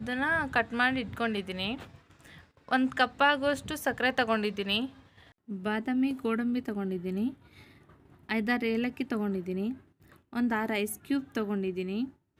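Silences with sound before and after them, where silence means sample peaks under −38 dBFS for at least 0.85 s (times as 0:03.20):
0:07.33–0:08.29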